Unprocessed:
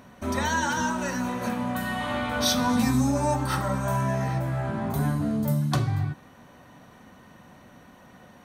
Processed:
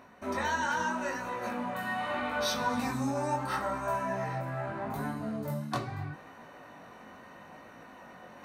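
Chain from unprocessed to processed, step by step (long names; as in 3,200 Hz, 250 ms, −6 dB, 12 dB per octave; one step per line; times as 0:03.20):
bass and treble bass −11 dB, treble −8 dB
notch filter 3,300 Hz, Q 9.6
reversed playback
upward compression, threshold −39 dBFS
reversed playback
chorus effect 0.78 Hz, delay 18 ms, depth 5.1 ms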